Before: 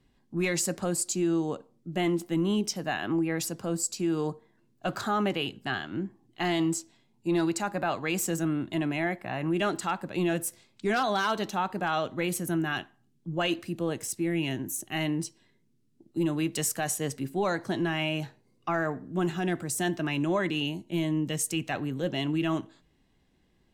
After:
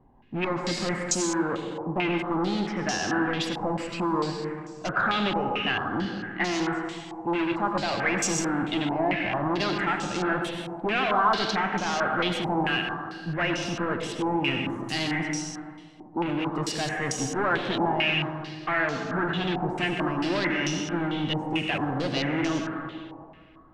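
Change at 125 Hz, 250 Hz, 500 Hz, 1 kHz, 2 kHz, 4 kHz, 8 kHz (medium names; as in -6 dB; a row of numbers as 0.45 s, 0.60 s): +0.5 dB, +1.0 dB, +1.5 dB, +5.5 dB, +6.0 dB, +5.0 dB, -1.0 dB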